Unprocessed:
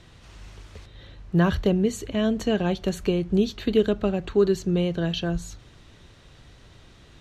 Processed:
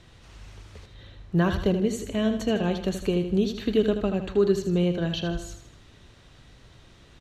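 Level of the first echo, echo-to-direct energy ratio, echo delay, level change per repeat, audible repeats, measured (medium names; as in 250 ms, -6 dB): -9.0 dB, -8.0 dB, 79 ms, -7.0 dB, 4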